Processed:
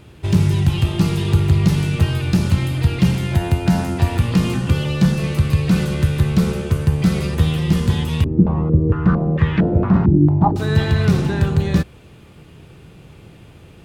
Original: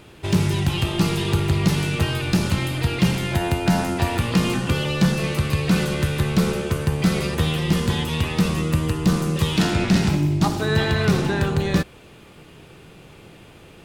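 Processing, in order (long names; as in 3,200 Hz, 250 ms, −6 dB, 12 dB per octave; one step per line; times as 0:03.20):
parametric band 81 Hz +10 dB 2.7 octaves
0:08.24–0:10.56: low-pass on a step sequencer 4.4 Hz 330–1,800 Hz
level −2.5 dB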